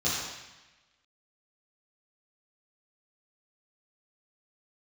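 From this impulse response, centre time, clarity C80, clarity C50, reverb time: 84 ms, 1.5 dB, -1.0 dB, 1.1 s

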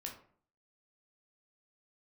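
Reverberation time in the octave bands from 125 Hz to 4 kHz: 0.60 s, 0.60 s, 0.55 s, 0.50 s, 0.40 s, 0.30 s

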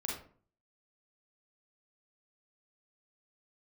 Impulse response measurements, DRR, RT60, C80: -3.0 dB, 0.45 s, 8.0 dB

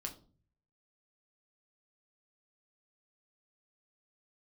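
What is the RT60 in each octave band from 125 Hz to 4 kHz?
0.85 s, 0.60 s, 0.45 s, 0.35 s, 0.25 s, 0.30 s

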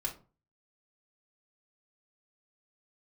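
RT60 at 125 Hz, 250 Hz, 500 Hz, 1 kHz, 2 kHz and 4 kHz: 0.50 s, 0.40 s, 0.35 s, 0.35 s, 0.25 s, 0.20 s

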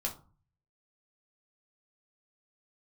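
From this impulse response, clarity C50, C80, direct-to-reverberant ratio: 11.5 dB, 18.0 dB, -0.5 dB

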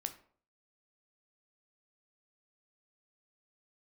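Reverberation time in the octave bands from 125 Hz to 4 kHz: 0.55 s, 0.55 s, 0.55 s, 0.50 s, 0.40 s, 0.30 s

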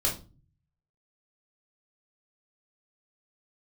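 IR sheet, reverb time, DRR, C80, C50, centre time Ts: 0.35 s, -5.0 dB, 16.5 dB, 9.5 dB, 22 ms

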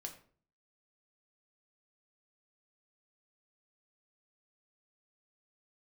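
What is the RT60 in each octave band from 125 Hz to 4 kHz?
0.65 s, 0.60 s, 0.50 s, 0.40 s, 0.40 s, 0.30 s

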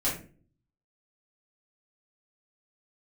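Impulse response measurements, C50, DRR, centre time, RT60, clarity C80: 6.5 dB, -9.5 dB, 31 ms, 0.40 s, 12.0 dB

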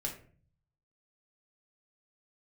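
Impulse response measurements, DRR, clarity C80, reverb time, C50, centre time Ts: -1.0 dB, 12.5 dB, 0.45 s, 8.5 dB, 19 ms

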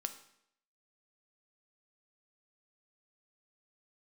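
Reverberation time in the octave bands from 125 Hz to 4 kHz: 0.65 s, 0.70 s, 0.75 s, 0.70 s, 0.70 s, 0.65 s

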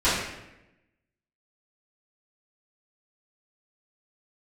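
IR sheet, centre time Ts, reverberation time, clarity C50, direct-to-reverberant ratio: 66 ms, 0.95 s, 0.5 dB, -16.0 dB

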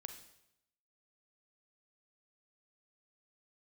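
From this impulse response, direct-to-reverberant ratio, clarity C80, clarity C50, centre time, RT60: 6.5 dB, 11.5 dB, 8.5 dB, 15 ms, 0.80 s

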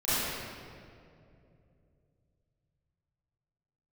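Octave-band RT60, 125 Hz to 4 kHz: 4.4 s, 3.3 s, 3.1 s, 2.1 s, 1.8 s, 1.5 s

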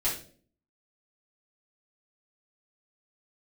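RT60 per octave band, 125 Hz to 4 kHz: 0.65 s, 0.70 s, 0.55 s, 0.35 s, 0.35 s, 0.35 s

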